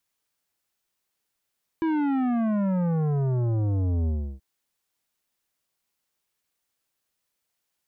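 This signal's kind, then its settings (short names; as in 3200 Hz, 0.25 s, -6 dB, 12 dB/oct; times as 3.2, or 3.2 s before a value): sub drop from 330 Hz, over 2.58 s, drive 12 dB, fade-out 0.33 s, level -23 dB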